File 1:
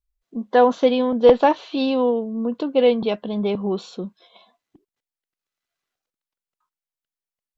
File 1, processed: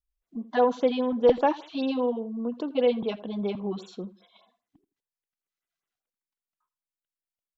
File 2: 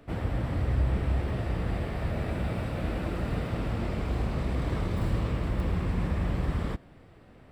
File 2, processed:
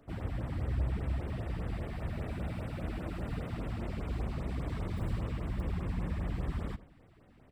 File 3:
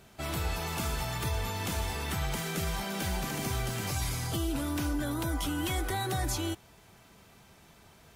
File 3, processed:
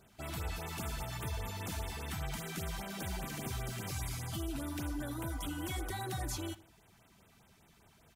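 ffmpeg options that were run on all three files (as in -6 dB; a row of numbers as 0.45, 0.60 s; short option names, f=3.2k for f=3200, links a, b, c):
-filter_complex "[0:a]asplit=2[a][b];[b]adelay=83,lowpass=f=2.7k:p=1,volume=-17dB,asplit=2[c][d];[d]adelay=83,lowpass=f=2.7k:p=1,volume=0.25[e];[c][e]amix=inputs=2:normalize=0[f];[a][f]amix=inputs=2:normalize=0,afftfilt=real='re*(1-between(b*sr/1024,400*pow(5700/400,0.5+0.5*sin(2*PI*5*pts/sr))/1.41,400*pow(5700/400,0.5+0.5*sin(2*PI*5*pts/sr))*1.41))':imag='im*(1-between(b*sr/1024,400*pow(5700/400,0.5+0.5*sin(2*PI*5*pts/sr))/1.41,400*pow(5700/400,0.5+0.5*sin(2*PI*5*pts/sr))*1.41))':win_size=1024:overlap=0.75,volume=-6.5dB"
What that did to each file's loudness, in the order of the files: -7.0, -6.5, -7.0 LU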